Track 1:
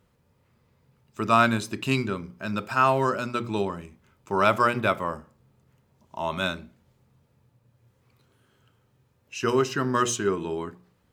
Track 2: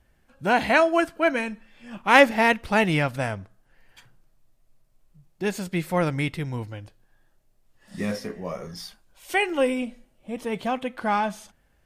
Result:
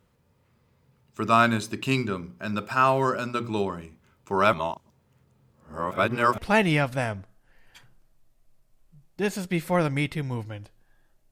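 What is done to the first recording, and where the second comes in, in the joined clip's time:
track 1
0:04.53–0:06.38: reverse
0:06.38: continue with track 2 from 0:02.60

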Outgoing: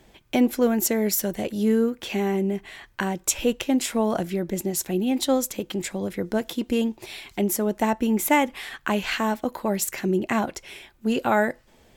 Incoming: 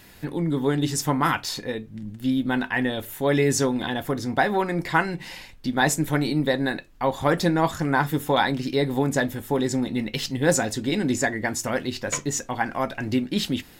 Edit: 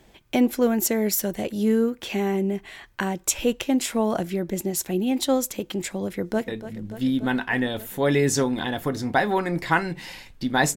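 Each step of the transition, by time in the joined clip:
outgoing
0:06.04–0:06.48: delay throw 290 ms, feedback 80%, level −13 dB
0:06.48: continue with incoming from 0:01.71

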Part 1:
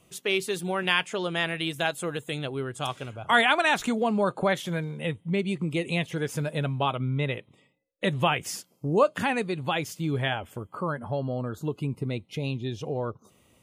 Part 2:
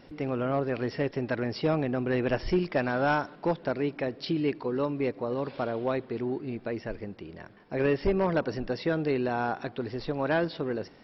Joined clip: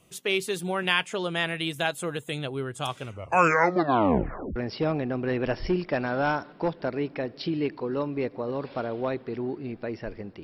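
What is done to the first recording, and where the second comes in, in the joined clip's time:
part 1
0:03.02: tape stop 1.54 s
0:04.56: continue with part 2 from 0:01.39

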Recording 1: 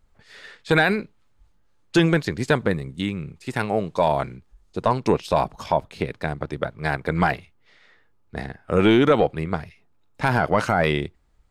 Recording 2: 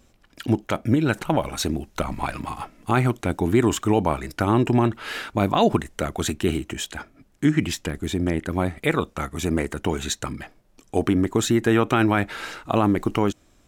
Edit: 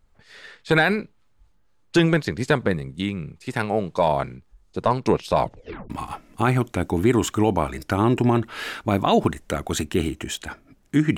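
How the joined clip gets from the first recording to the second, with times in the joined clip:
recording 1
0:05.39: tape stop 0.51 s
0:05.90: continue with recording 2 from 0:02.39

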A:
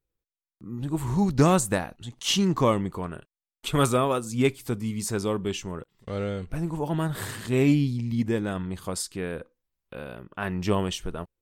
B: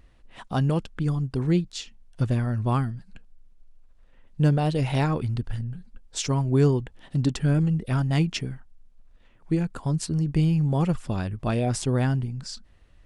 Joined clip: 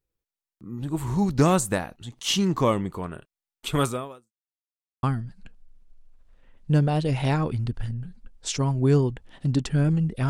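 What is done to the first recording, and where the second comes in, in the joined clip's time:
A
0:03.77–0:04.32: fade out quadratic
0:04.32–0:05.03: silence
0:05.03: continue with B from 0:02.73

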